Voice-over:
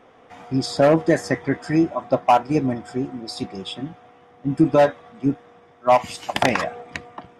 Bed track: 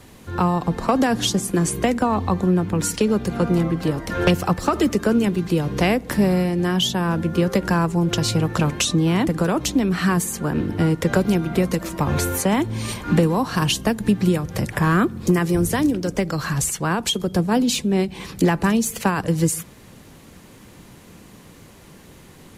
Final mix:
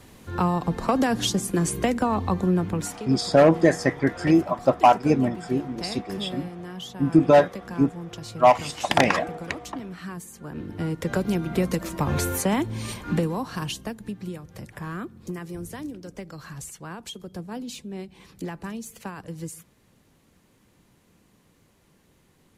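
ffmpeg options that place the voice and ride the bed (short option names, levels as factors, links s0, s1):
-filter_complex "[0:a]adelay=2550,volume=1[s0];[1:a]volume=3.16,afade=t=out:st=2.69:d=0.29:silence=0.211349,afade=t=in:st=10.35:d=1.35:silence=0.211349,afade=t=out:st=12.43:d=1.69:silence=0.237137[s1];[s0][s1]amix=inputs=2:normalize=0"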